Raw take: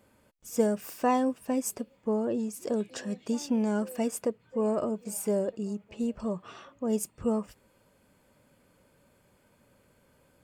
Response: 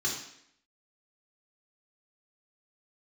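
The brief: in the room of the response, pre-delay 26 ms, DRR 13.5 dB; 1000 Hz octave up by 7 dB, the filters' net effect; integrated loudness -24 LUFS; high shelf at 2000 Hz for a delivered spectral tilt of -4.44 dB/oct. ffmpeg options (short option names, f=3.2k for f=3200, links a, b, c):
-filter_complex "[0:a]equalizer=f=1k:t=o:g=8,highshelf=f=2k:g=5,asplit=2[a][b];[1:a]atrim=start_sample=2205,adelay=26[c];[b][c]afir=irnorm=-1:irlink=0,volume=-20dB[d];[a][d]amix=inputs=2:normalize=0,volume=4.5dB"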